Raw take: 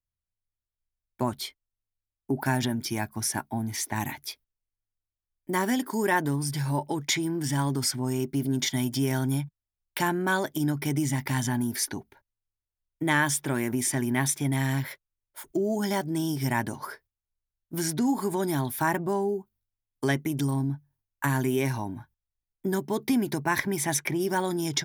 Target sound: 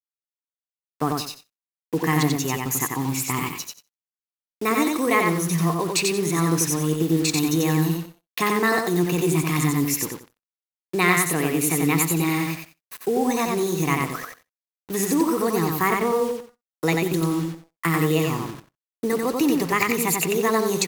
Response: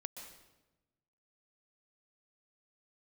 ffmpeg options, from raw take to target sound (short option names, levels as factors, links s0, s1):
-filter_complex "[0:a]acrusher=bits=6:mix=0:aa=0.000001,asplit=2[s0][s1];[s1]aecho=0:1:108|216|324|432:0.708|0.184|0.0479|0.0124[s2];[s0][s2]amix=inputs=2:normalize=0,aeval=exprs='sgn(val(0))*max(abs(val(0))-0.00211,0)':c=same,asplit=2[s3][s4];[s4]aecho=0:1:76:0.0794[s5];[s3][s5]amix=inputs=2:normalize=0,asetrate=52479,aresample=44100,volume=1.58"